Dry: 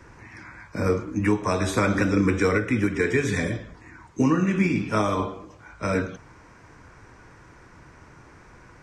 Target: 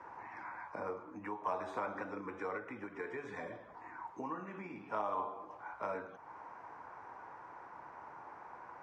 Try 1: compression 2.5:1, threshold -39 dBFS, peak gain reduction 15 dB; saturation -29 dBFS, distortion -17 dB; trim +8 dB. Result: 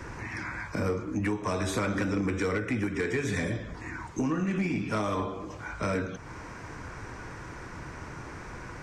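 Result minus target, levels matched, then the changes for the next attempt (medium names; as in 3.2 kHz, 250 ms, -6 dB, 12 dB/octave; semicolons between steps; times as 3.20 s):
1 kHz band -8.0 dB
add after compression: band-pass filter 860 Hz, Q 3.2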